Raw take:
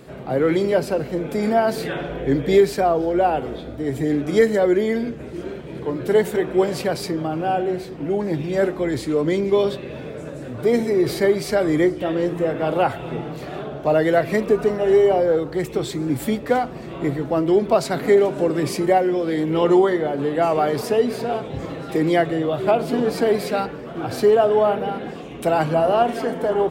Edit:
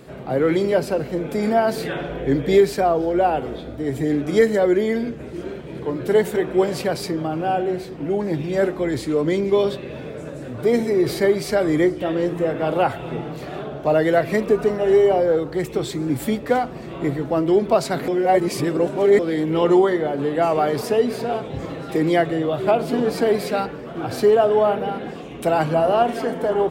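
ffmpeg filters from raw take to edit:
-filter_complex "[0:a]asplit=3[a][b][c];[a]atrim=end=18.082[d];[b]atrim=start=18.078:end=19.192,asetpts=PTS-STARTPTS,areverse[e];[c]atrim=start=19.188[f];[d][e]acrossfade=d=0.004:c1=hsin:c2=hsin[g];[g][f]acrossfade=d=0.004:c1=hsin:c2=hsin"

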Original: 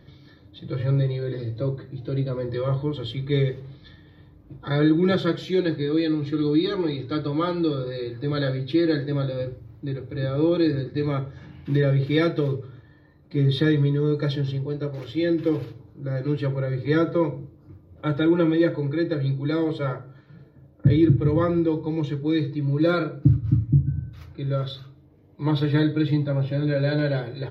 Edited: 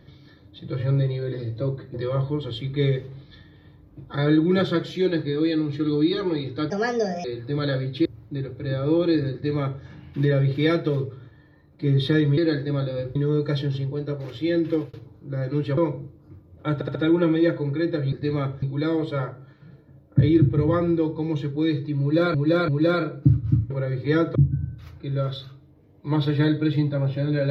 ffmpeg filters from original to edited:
-filter_complex "[0:a]asplit=18[a][b][c][d][e][f][g][h][i][j][k][l][m][n][o][p][q][r];[a]atrim=end=1.942[s];[b]atrim=start=2.468:end=7.234[t];[c]atrim=start=7.23:end=7.98,asetpts=PTS-STARTPTS,asetrate=60858,aresample=44100,atrim=end_sample=23967,asetpts=PTS-STARTPTS[u];[d]atrim=start=7.976:end=8.792[v];[e]atrim=start=9.568:end=13.892[w];[f]atrim=start=8.788:end=9.572[x];[g]atrim=start=13.888:end=15.67,asetpts=PTS-STARTPTS,afade=t=out:st=1.522:d=0.26:c=qsin[y];[h]atrim=start=15.67:end=16.512,asetpts=PTS-STARTPTS,afade=t=in:d=0.004:c=hsin[z];[i]atrim=start=17.158:end=18.202[aa];[j]atrim=start=18.128:end=18.202[ab];[k]atrim=start=18.128:end=18.202[ac];[l]atrim=start=18.128:end=19.302[ad];[m]atrim=start=10.848:end=11.352[ae];[n]atrim=start=19.298:end=23.022[af];[o]atrim=start=22.678:end=23.022[ag];[p]atrim=start=22.678:end=23.702[ah];[q]atrim=start=16.508:end=17.162[ai];[r]atrim=start=23.698[aj];[s][t]acrossfade=d=0.004:c1=hsin:c2=hsin[ak];[ak][u]acrossfade=d=0.004:c1=hsin:c2=hsin[al];[al][v]acrossfade=d=0.004:c1=hsin:c2=hsin[am];[am][w]acrossfade=d=0.004:c1=hsin:c2=hsin[an];[an][x]acrossfade=d=0.004:c1=hsin:c2=hsin[ao];[y][z]concat=n=2:v=0:a=1[ap];[ao][ap]acrossfade=d=0.004:c1=hsin:c2=hsin[aq];[aq][aa]acrossfade=d=0.004:c1=hsin:c2=hsin[ar];[ar][ab]acrossfade=d=0.004:c1=hsin:c2=hsin[as];[as][ac]acrossfade=d=0.004:c1=hsin:c2=hsin[at];[at][ad]acrossfade=d=0.004:c1=hsin:c2=hsin[au];[au][ae]acrossfade=d=0.004:c1=hsin:c2=hsin[av];[av][af]acrossfade=d=0.004:c1=hsin:c2=hsin[aw];[aw][ag]acrossfade=d=0.004:c1=hsin:c2=hsin[ax];[ax][ah]acrossfade=d=0.004:c1=hsin:c2=hsin[ay];[ay][ai]acrossfade=d=0.004:c1=hsin:c2=hsin[az];[az][aj]acrossfade=d=0.004:c1=hsin:c2=hsin"

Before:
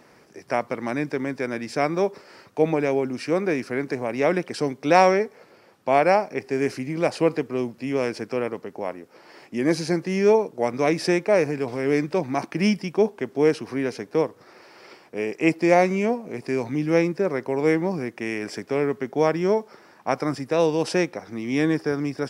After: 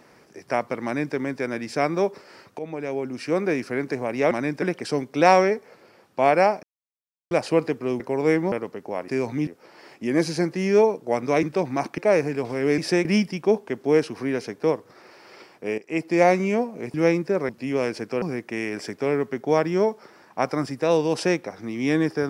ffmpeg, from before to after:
-filter_complex "[0:a]asplit=18[a][b][c][d][e][f][g][h][i][j][k][l][m][n][o][p][q][r];[a]atrim=end=2.59,asetpts=PTS-STARTPTS,afade=t=out:st=2.586:d=0.004:c=hsin:silence=0.16788[s];[b]atrim=start=2.59:end=4.312,asetpts=PTS-STARTPTS,afade=t=in:d=0.81:silence=0.16788[t];[c]atrim=start=0.838:end=1.152[u];[d]atrim=start=4.308:end=6.32,asetpts=PTS-STARTPTS,afade=t=out:st=2.008:d=0.004:c=hsin[v];[e]atrim=start=6.32:end=7,asetpts=PTS-STARTPTS,volume=0[w];[f]atrim=start=7:end=7.692,asetpts=PTS-STARTPTS,afade=t=in:d=0.004:c=hsin[x];[g]atrim=start=17.388:end=17.912[y];[h]atrim=start=8.418:end=8.982[z];[i]atrim=start=16.448:end=16.842[aa];[j]atrim=start=8.978:end=10.942[ab];[k]atrim=start=12.008:end=12.562[ac];[l]atrim=start=11.208:end=12.012[ad];[m]atrim=start=10.938:end=11.212[ae];[n]atrim=start=12.558:end=15.29,asetpts=PTS-STARTPTS,afade=t=out:st=2.728:d=0.004:c=hsin:silence=0.158489[af];[o]atrim=start=15.29:end=16.452,asetpts=PTS-STARTPTS,afade=t=in:d=0.46:silence=0.158489[ag];[p]atrim=start=16.838:end=17.392[ah];[q]atrim=start=7.688:end=8.422[ai];[r]atrim=start=17.908[aj];[s][t]concat=n=2:v=0:a=1[ak];[ak][u]acrossfade=d=0.004:c1=hsin:c2=hsin[al];[v][w][x]concat=n=3:v=0:a=1[am];[al][am]acrossfade=d=0.004:c1=hsin:c2=hsin[an];[an][y]acrossfade=d=0.004:c1=hsin:c2=hsin[ao];[ao][z]acrossfade=d=0.004:c1=hsin:c2=hsin[ap];[ap][aa]acrossfade=d=0.004:c1=hsin:c2=hsin[aq];[aq][ab]acrossfade=d=0.004:c1=hsin:c2=hsin[ar];[ar][ac]acrossfade=d=0.004:c1=hsin:c2=hsin[as];[as][ad]acrossfade=d=0.004:c1=hsin:c2=hsin[at];[at][ae]acrossfade=d=0.004:c1=hsin:c2=hsin[au];[af][ag]concat=n=2:v=0:a=1[av];[au][av]acrossfade=d=0.004:c1=hsin:c2=hsin[aw];[aw][ah]acrossfade=d=0.004:c1=hsin:c2=hsin[ax];[ax][ai]acrossfade=d=0.004:c1=hsin:c2=hsin[ay];[ay][aj]acrossfade=d=0.004:c1=hsin:c2=hsin"

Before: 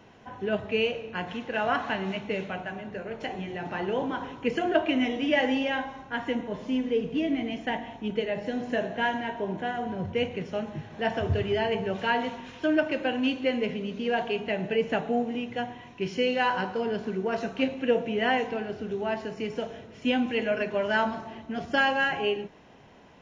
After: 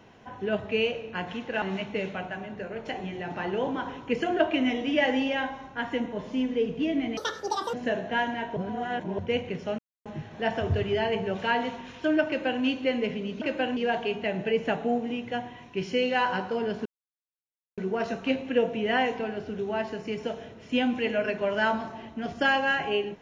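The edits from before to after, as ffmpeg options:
-filter_complex "[0:a]asplit=10[a][b][c][d][e][f][g][h][i][j];[a]atrim=end=1.622[k];[b]atrim=start=1.968:end=7.524[l];[c]atrim=start=7.52:end=8.6,asetpts=PTS-STARTPTS,asetrate=84231,aresample=44100,atrim=end_sample=24936,asetpts=PTS-STARTPTS[m];[d]atrim=start=8.596:end=9.432[n];[e]atrim=start=9.428:end=10.052,asetpts=PTS-STARTPTS,areverse[o];[f]atrim=start=10.048:end=10.65,asetpts=PTS-STARTPTS,afade=t=out:st=0.598:d=0.004:c=hsin,apad=pad_dur=0.27[p];[g]atrim=start=10.65:end=14.012,asetpts=PTS-STARTPTS,afade=t=in:d=0.004:c=hsin[q];[h]atrim=start=12.868:end=13.222[r];[i]atrim=start=14.008:end=17.1,asetpts=PTS-STARTPTS,afade=t=out:st=3.088:d=0.004:c=hsin,apad=pad_dur=0.92[s];[j]atrim=start=17.1,asetpts=PTS-STARTPTS,afade=t=in:d=0.004:c=hsin[t];[k][l]acrossfade=d=0.004:c1=hsin:c2=hsin[u];[u][m]acrossfade=d=0.004:c1=hsin:c2=hsin[v];[v][n]acrossfade=d=0.004:c1=hsin:c2=hsin[w];[w][o]acrossfade=d=0.004:c1=hsin:c2=hsin[x];[p][q]concat=n=2:v=0:a=1[y];[x][y]acrossfade=d=0.004:c1=hsin:c2=hsin[z];[z][r]acrossfade=d=0.004:c1=hsin:c2=hsin[aa];[s][t]concat=n=2:v=0:a=1[ab];[aa][ab]acrossfade=d=0.004:c1=hsin:c2=hsin"

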